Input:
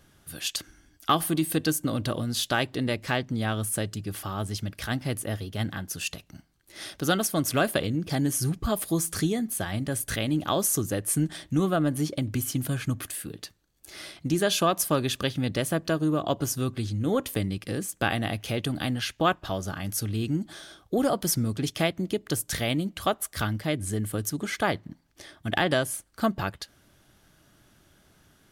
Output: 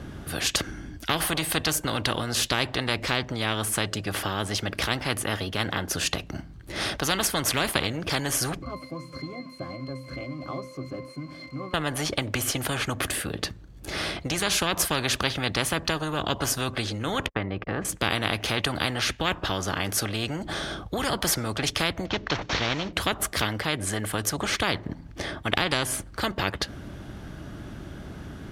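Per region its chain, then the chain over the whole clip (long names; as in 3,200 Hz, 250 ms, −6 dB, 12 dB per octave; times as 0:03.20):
0:08.62–0:11.74: spike at every zero crossing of −18 dBFS + high-pass filter 250 Hz + resonances in every octave C, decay 0.24 s
0:17.26–0:17.85: low-pass filter 1,500 Hz + noise gate −46 dBFS, range −49 dB
0:22.06–0:22.93: variable-slope delta modulation 32 kbit/s + notch filter 4,900 Hz, Q 15
whole clip: high-pass filter 53 Hz; RIAA equalisation playback; every bin compressed towards the loudest bin 4 to 1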